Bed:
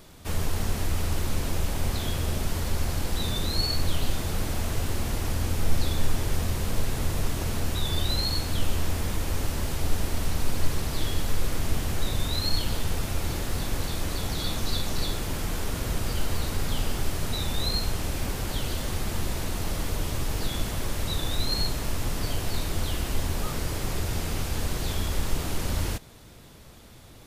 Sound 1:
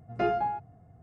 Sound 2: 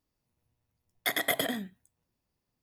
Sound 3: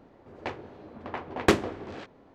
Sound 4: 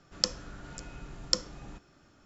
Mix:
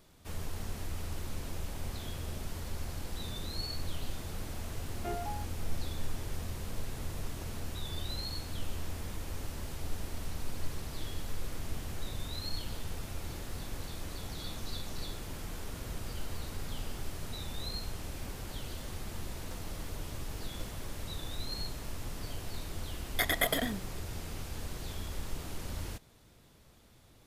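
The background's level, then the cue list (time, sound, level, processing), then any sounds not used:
bed −11.5 dB
0:04.85: mix in 1 −12.5 dB + converter with a step at zero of −41 dBFS
0:19.27: mix in 4 −13 dB + gap after every zero crossing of 0.29 ms
0:22.13: mix in 2 −1 dB
not used: 3

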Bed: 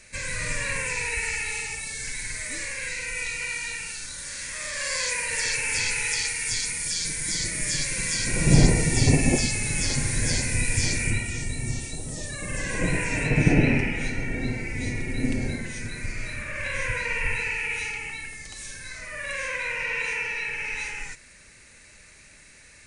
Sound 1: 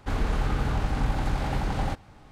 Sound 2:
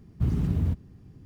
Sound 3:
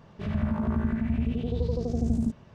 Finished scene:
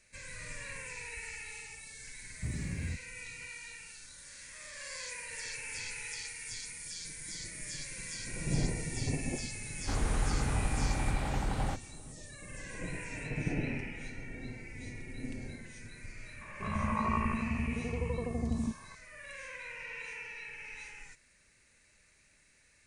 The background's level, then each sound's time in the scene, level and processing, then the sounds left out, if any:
bed −15 dB
0:02.22: mix in 2 −12 dB
0:09.81: mix in 1 −5.5 dB
0:16.41: mix in 3 −7.5 dB + low-pass with resonance 1,100 Hz, resonance Q 13

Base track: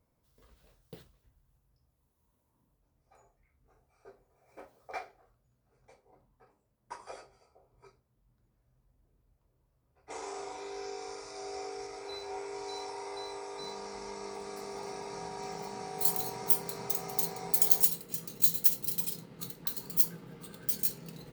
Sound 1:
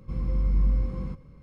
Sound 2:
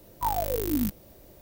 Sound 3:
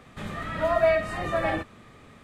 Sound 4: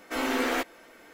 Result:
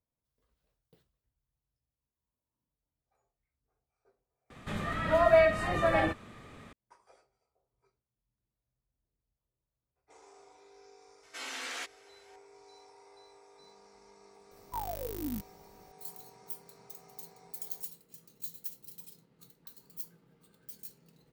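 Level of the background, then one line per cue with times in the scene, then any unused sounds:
base track −16.5 dB
0:04.50: overwrite with 3 −0.5 dB
0:11.23: mix in 4 −14.5 dB + meter weighting curve ITU-R 468
0:14.51: mix in 2 −10 dB
not used: 1

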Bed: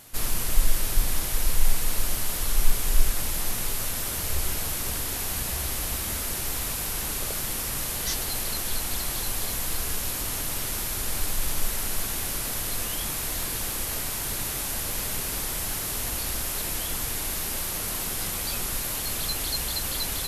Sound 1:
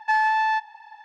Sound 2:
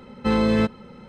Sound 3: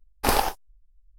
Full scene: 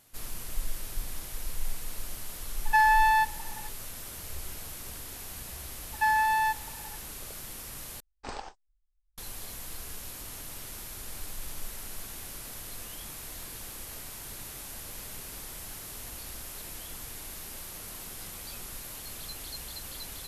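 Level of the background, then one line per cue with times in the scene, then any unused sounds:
bed −12 dB
0:02.65: mix in 1 −0.5 dB
0:05.93: mix in 1 −4 dB
0:08.00: overwrite with 3 −17 dB + Chebyshev low-pass filter 8,500 Hz, order 10
not used: 2

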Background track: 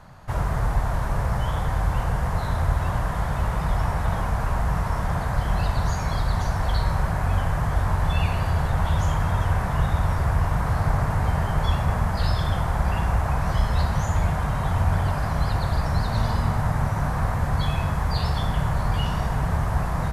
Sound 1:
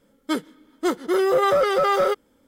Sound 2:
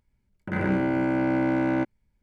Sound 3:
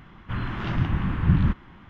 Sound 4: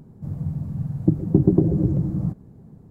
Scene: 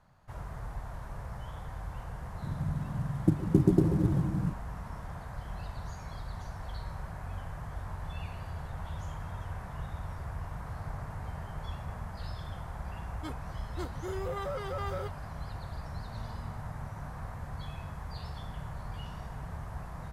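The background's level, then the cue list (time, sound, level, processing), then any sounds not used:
background track −17 dB
0:02.20: mix in 4 −6.5 dB + variable-slope delta modulation 64 kbit/s
0:12.94: mix in 1 −18 dB
not used: 2, 3

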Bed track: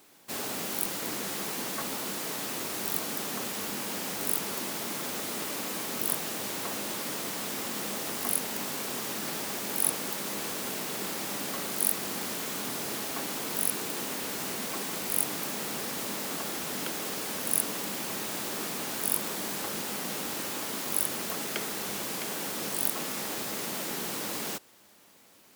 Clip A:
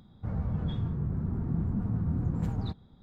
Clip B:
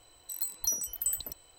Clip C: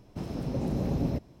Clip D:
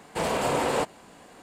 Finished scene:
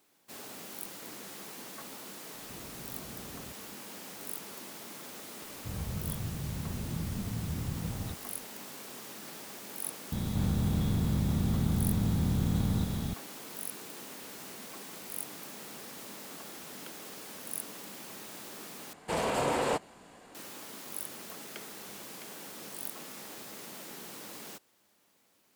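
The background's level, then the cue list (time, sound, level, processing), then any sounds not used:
bed track −11 dB
0:02.34: mix in C −8.5 dB + downward compressor, threshold −38 dBFS
0:05.42: mix in A −6 dB
0:10.12: mix in A −4 dB + compressor on every frequency bin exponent 0.2
0:18.93: overwrite with D −4 dB
not used: B

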